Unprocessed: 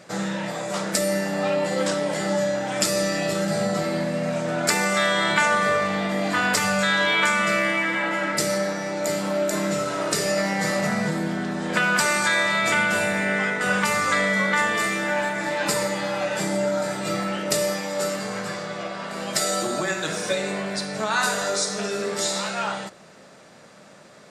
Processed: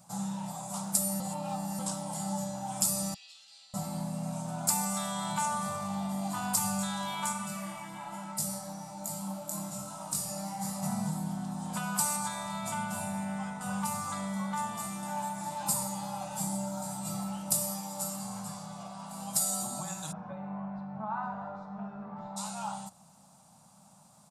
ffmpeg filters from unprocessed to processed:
-filter_complex "[0:a]asettb=1/sr,asplit=3[a][b][c];[a]atrim=end=3.144[d];[b]atrim=start=3.14:end=3.74,asetpts=PTS-STARTPTS,afade=t=in:d=0.004:c=qsin,afade=t=out:st=0.596:d=0.004:c=qsin,asuperpass=centerf=3300:order=4:qfactor=1.7[e];[c]atrim=start=3.736[f];[d][e]acrossfade=d=0.004:c1=hsin:c2=qsin[g];[g][f]acrossfade=d=0.004:c1=qsin:c2=hsin,asplit=3[h][i][j];[h]afade=t=out:st=7.32:d=0.02[k];[i]flanger=delay=19:depth=5.2:speed=1.2,afade=t=in:st=7.32:d=0.02,afade=t=out:st=10.81:d=0.02[l];[j]afade=t=in:st=10.81:d=0.02[m];[k][l][m]amix=inputs=3:normalize=0,asettb=1/sr,asplit=3[n][o][p];[n]atrim=end=12.164[q];[o]atrim=start=12.16:end=15.03,asetpts=PTS-STARTPTS,afade=t=in:d=0.004:c=qsin,afade=t=out:st=2.866:d=0.004:c=qsin,highshelf=f=4.3k:g=-6.5[r];[p]atrim=start=15.026[s];[q][r]acrossfade=d=0.004:c1=hsin:c2=qsin[t];[t][s]acrossfade=d=0.004:c1=qsin:c2=hsin,asplit=3[u][v][w];[u]afade=t=out:st=20.11:d=0.02[x];[v]lowpass=f=1.8k:w=0.5412,lowpass=f=1.8k:w=1.3066,afade=t=in:st=20.11:d=0.02,afade=t=out:st=22.36:d=0.02[y];[w]afade=t=in:st=22.36:d=0.02[z];[x][y][z]amix=inputs=3:normalize=0,asplit=3[aa][ab][ac];[aa]atrim=end=1.202[ad];[ab]atrim=start=1.198:end=1.792,asetpts=PTS-STARTPTS,areverse[ae];[ac]atrim=start=1.788[af];[ad][ae]acrossfade=d=0.004:c1=hsin:c2=hsin[ag];[ag][af]acrossfade=d=0.004:c1=hsin:c2=hsin,firequalizer=gain_entry='entry(190,0);entry(390,-27);entry(810,2);entry(1800,-23);entry(2700,-13);entry(9600,9)':delay=0.05:min_phase=1,volume=-5.5dB"

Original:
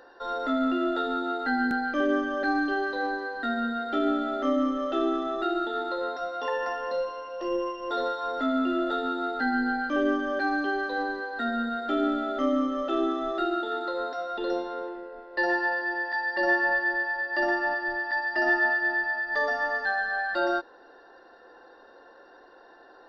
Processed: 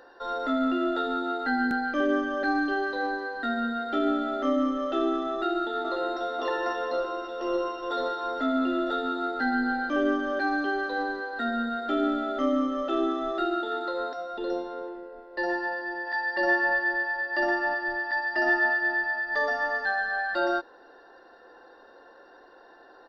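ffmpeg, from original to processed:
-filter_complex "[0:a]asplit=2[a][b];[b]afade=t=in:st=5.3:d=0.01,afade=t=out:st=6.3:d=0.01,aecho=0:1:540|1080|1620|2160|2700|3240|3780|4320|4860|5400|5940|6480:0.530884|0.398163|0.298622|0.223967|0.167975|0.125981|0.094486|0.0708645|0.0531484|0.0398613|0.029896|0.022422[c];[a][c]amix=inputs=2:normalize=0,asettb=1/sr,asplit=3[d][e][f];[d]atrim=end=14.134[g];[e]atrim=start=14.13:end=16.07,asetpts=PTS-STARTPTS,afade=t=in:d=0.004:c=qsin,afade=t=out:st=1.936:d=0.004:c=qsin,equalizer=f=2.2k:w=0.38:g=-5[h];[f]atrim=start=16.066[i];[g][h]acrossfade=d=0.004:c1=hsin:c2=qsin[j];[j][i]acrossfade=d=0.004:c1=qsin:c2=hsin"

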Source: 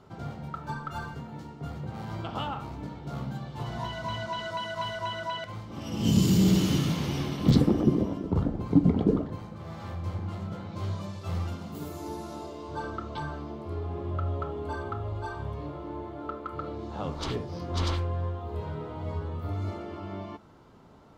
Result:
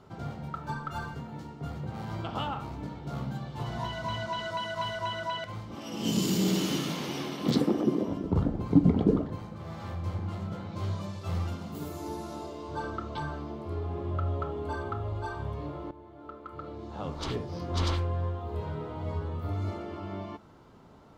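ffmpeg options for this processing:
-filter_complex "[0:a]asettb=1/sr,asplit=3[a][b][c];[a]atrim=end=5.754[d];[b]atrim=start=5.75:end=8.08,asetpts=PTS-STARTPTS,afade=t=in:d=0.004:c=qsin,afade=t=out:st=2.326:d=0.004:c=qsin,highpass=250[e];[c]atrim=start=8.076[f];[d][e]acrossfade=d=0.004:c1=hsin:c2=qsin[g];[g][f]acrossfade=d=0.004:c1=qsin:c2=hsin,asplit=2[h][i];[h]atrim=end=15.91,asetpts=PTS-STARTPTS,afade=t=out:st=15.906:d=0.004:c=hsin:silence=0.199526[j];[i]atrim=start=15.91,asetpts=PTS-STARTPTS,afade=t=in:d=1.68:silence=0.199526[k];[j][k]concat=n=2:v=0:a=1"

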